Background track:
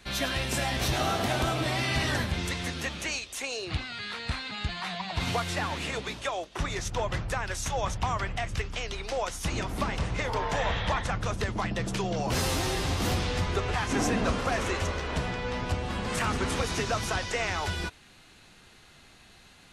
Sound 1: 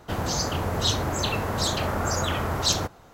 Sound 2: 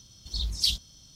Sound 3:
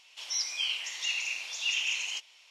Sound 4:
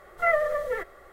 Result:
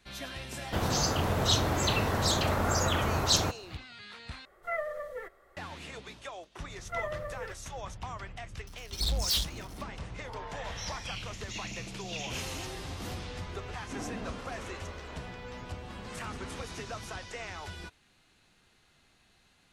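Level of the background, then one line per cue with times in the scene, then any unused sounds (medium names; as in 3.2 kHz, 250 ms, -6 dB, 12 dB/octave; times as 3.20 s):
background track -11 dB
0.64 s: add 1 -2 dB
4.45 s: replace with 4 -11 dB
6.70 s: add 4 -12 dB
8.67 s: add 2 -12.5 dB + waveshaping leveller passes 5
10.47 s: add 3 -10 dB + spectral peaks clipped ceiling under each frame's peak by 12 dB
13.41 s: add 1 -17.5 dB + compression 10:1, threshold -39 dBFS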